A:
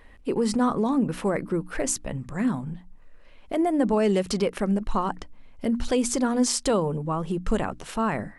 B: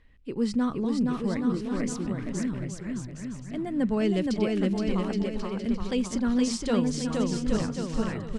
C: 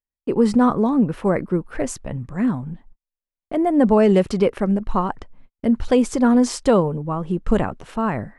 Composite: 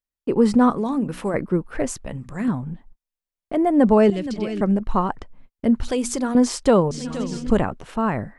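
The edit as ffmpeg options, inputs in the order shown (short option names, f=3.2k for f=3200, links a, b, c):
-filter_complex "[0:a]asplit=3[a][b][c];[1:a]asplit=2[d][e];[2:a]asplit=6[f][g][h][i][j][k];[f]atrim=end=0.702[l];[a]atrim=start=0.698:end=1.342[m];[g]atrim=start=1.338:end=2.062[n];[b]atrim=start=2.058:end=2.482[o];[h]atrim=start=2.478:end=4.102[p];[d]atrim=start=4.098:end=4.612[q];[i]atrim=start=4.608:end=5.832[r];[c]atrim=start=5.828:end=6.352[s];[j]atrim=start=6.348:end=6.912[t];[e]atrim=start=6.908:end=7.502[u];[k]atrim=start=7.498[v];[l][m]acrossfade=d=0.004:c1=hsin:c2=hsin[w];[w][n]acrossfade=d=0.004:c1=hsin:c2=hsin[x];[x][o]acrossfade=d=0.004:c1=hsin:c2=hsin[y];[y][p]acrossfade=d=0.004:c1=hsin:c2=hsin[z];[z][q]acrossfade=d=0.004:c1=hsin:c2=hsin[aa];[aa][r]acrossfade=d=0.004:c1=hsin:c2=hsin[ab];[ab][s]acrossfade=d=0.004:c1=hsin:c2=hsin[ac];[ac][t]acrossfade=d=0.004:c1=hsin:c2=hsin[ad];[ad][u]acrossfade=d=0.004:c1=hsin:c2=hsin[ae];[ae][v]acrossfade=d=0.004:c1=hsin:c2=hsin"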